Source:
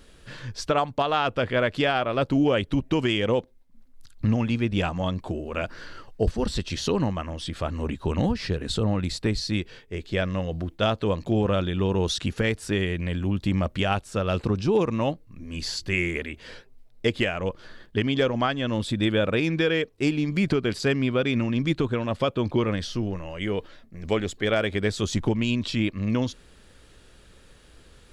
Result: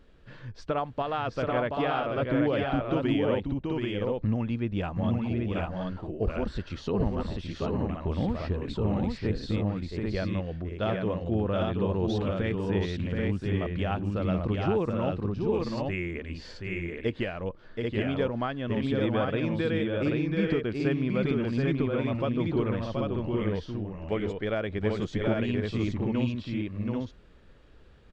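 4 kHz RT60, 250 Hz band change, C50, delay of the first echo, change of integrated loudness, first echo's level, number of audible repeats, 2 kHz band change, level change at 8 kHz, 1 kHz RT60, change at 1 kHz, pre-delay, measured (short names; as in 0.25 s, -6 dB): none, -2.5 dB, none, 0.728 s, -3.5 dB, -4.5 dB, 2, -7.0 dB, under -15 dB, none, -4.0 dB, none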